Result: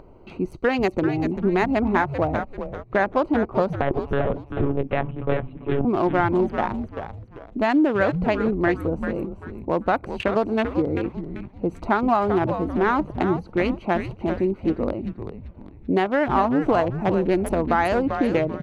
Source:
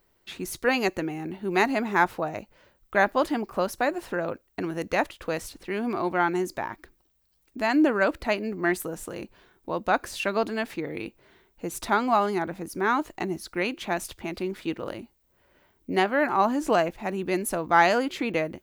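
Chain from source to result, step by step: local Wiener filter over 25 samples; 3.81–5.85 s: monotone LPC vocoder at 8 kHz 140 Hz; compression, threshold -25 dBFS, peak gain reduction 11.5 dB; frequency-shifting echo 390 ms, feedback 32%, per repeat -130 Hz, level -8.5 dB; upward compressor, threshold -44 dBFS; low-pass 2.2 kHz 6 dB/octave; loudness maximiser +17 dB; trim -7.5 dB

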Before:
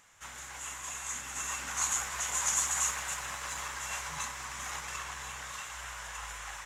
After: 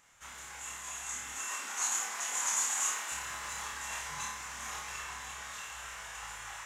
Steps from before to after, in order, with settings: 1.33–3.12 s: high-pass 230 Hz 24 dB/octave; on a send: flutter echo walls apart 4.7 m, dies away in 0.45 s; on the sum: trim -4 dB

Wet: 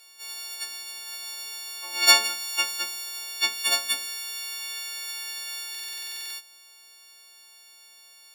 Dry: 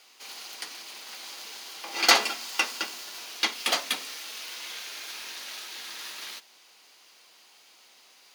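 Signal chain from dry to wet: partials quantised in pitch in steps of 4 st; buffer glitch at 5.70 s, samples 2048, times 12; trim -6.5 dB

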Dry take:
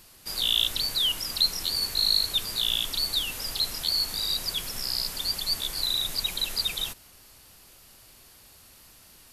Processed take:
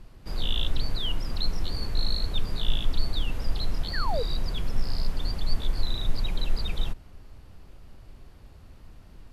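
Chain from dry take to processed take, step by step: treble shelf 5.1 kHz -10 dB; painted sound fall, 3.93–4.23 s, 430–2000 Hz -32 dBFS; tilt EQ -3.5 dB/octave

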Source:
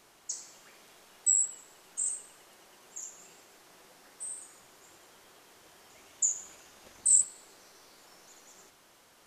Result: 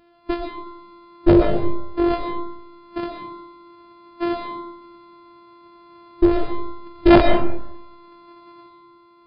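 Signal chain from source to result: sorted samples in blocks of 128 samples; Chebyshev shaper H 7 -9 dB, 8 -7 dB, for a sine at -9.5 dBFS; in parallel at -2.5 dB: compressor with a negative ratio -32 dBFS, ratio -0.5; on the sum: resampled via 11.025 kHz; on a send at -2 dB: reverberation RT60 1.1 s, pre-delay 75 ms; on the sum: spectral contrast expander 1.5:1; trim +4 dB

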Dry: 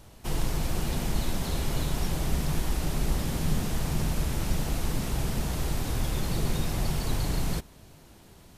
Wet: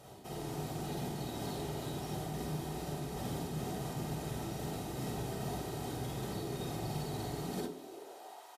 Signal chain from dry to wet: bass shelf 210 Hz -4 dB; comb 3.2 ms, depth 32%; small resonant body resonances 430/760 Hz, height 14 dB, ringing for 45 ms; reverse; compression 6:1, threshold -35 dBFS, peak gain reduction 13.5 dB; reverse; peaking EQ 68 Hz -3.5 dB 2.4 oct; reverberation RT60 0.30 s, pre-delay 46 ms, DRR 1 dB; high-pass sweep 130 Hz -> 900 Hz, 7.34–8.46 s; trim -4.5 dB; Opus 128 kbps 48 kHz

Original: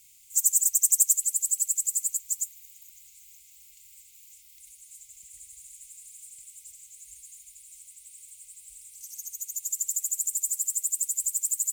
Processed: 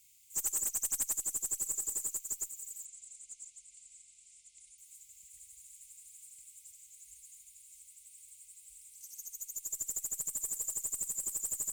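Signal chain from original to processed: backward echo that repeats 575 ms, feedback 55%, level -12.5 dB; 2.85–4.78 s: elliptic low-pass 9.6 kHz, stop band 40 dB; valve stage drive 20 dB, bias 0.25; trim -6.5 dB

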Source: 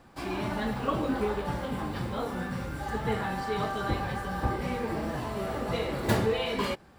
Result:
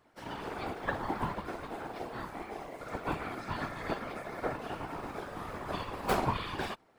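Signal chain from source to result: ring modulator 560 Hz; whisper effect; upward expansion 1.5:1, over -41 dBFS

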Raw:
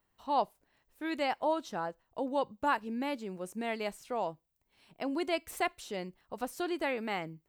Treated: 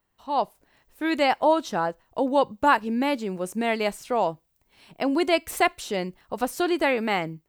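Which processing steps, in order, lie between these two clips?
level rider gain up to 8.5 dB; trim +2 dB

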